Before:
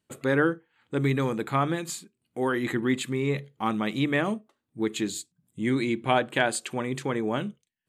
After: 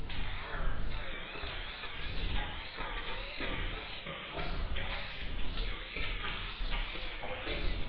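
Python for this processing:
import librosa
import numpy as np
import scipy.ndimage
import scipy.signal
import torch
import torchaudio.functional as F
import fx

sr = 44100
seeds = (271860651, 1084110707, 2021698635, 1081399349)

y = fx.echo_wet_highpass(x, sr, ms=627, feedback_pct=68, hz=1800.0, wet_db=-19.0)
y = fx.spec_gate(y, sr, threshold_db=-20, keep='weak')
y = fx.level_steps(y, sr, step_db=12)
y = fx.dmg_noise_colour(y, sr, seeds[0], colour='brown', level_db=-62.0)
y = fx.high_shelf(y, sr, hz=2600.0, db=8.5)
y = fx.over_compress(y, sr, threshold_db=-57.0, ratio=-1.0)
y = scipy.signal.sosfilt(scipy.signal.butter(12, 4100.0, 'lowpass', fs=sr, output='sos'), y)
y = fx.low_shelf(y, sr, hz=86.0, db=6.5)
y = fx.notch(y, sr, hz=1100.0, q=22.0)
y = fx.rev_gated(y, sr, seeds[1], gate_ms=420, shape='falling', drr_db=-4.0)
y = fx.wow_flutter(y, sr, seeds[2], rate_hz=2.1, depth_cents=98.0)
y = y * 10.0 ** (11.0 / 20.0)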